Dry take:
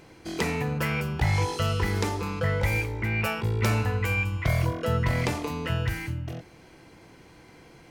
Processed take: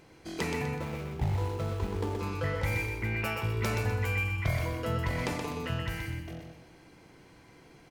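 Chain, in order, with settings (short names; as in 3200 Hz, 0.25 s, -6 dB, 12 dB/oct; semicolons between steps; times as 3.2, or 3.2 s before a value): 0.78–2.19 median filter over 25 samples; feedback echo 0.125 s, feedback 39%, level -5.5 dB; gain -5.5 dB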